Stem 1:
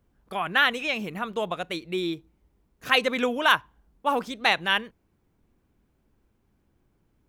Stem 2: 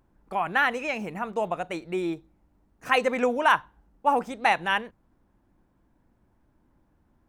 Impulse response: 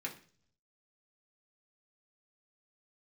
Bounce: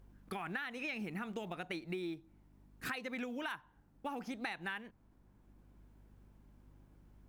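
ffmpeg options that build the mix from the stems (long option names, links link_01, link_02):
-filter_complex "[0:a]acrossover=split=310|3000[link_01][link_02][link_03];[link_02]acompressor=threshold=-23dB:ratio=6[link_04];[link_01][link_04][link_03]amix=inputs=3:normalize=0,acrusher=bits=8:mode=log:mix=0:aa=0.000001,aeval=exprs='val(0)+0.001*(sin(2*PI*50*n/s)+sin(2*PI*2*50*n/s)/2+sin(2*PI*3*50*n/s)/3+sin(2*PI*4*50*n/s)/4+sin(2*PI*5*50*n/s)/5)':channel_layout=same,volume=-1dB[link_05];[1:a]acompressor=threshold=-26dB:ratio=2.5,volume=-1,volume=-4.5dB,asplit=2[link_06][link_07];[link_07]apad=whole_len=321340[link_08];[link_05][link_08]sidechaincompress=threshold=-38dB:ratio=4:attack=16:release=1210[link_09];[link_09][link_06]amix=inputs=2:normalize=0,acompressor=threshold=-38dB:ratio=6"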